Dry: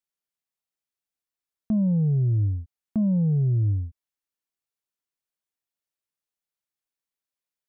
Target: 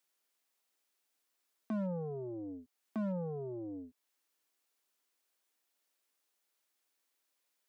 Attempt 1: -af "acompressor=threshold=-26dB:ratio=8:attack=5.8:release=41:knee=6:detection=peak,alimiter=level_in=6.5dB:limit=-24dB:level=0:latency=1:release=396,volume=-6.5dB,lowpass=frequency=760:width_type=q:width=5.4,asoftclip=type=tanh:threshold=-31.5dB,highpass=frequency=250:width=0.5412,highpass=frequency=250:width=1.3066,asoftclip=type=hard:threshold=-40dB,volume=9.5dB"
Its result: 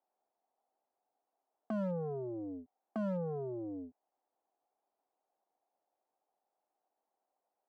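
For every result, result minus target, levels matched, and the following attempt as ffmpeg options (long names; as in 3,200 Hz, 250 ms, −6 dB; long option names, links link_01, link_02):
downward compressor: peak gain reduction +5.5 dB; 1,000 Hz band +2.0 dB
-af "alimiter=level_in=6.5dB:limit=-24dB:level=0:latency=1:release=396,volume=-6.5dB,lowpass=frequency=760:width_type=q:width=5.4,asoftclip=type=tanh:threshold=-31.5dB,highpass=frequency=250:width=0.5412,highpass=frequency=250:width=1.3066,asoftclip=type=hard:threshold=-40dB,volume=9.5dB"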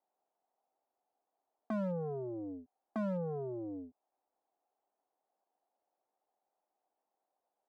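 1,000 Hz band +3.0 dB
-af "alimiter=level_in=6.5dB:limit=-24dB:level=0:latency=1:release=396,volume=-6.5dB,asoftclip=type=tanh:threshold=-31.5dB,highpass=frequency=250:width=0.5412,highpass=frequency=250:width=1.3066,asoftclip=type=hard:threshold=-40dB,volume=9.5dB"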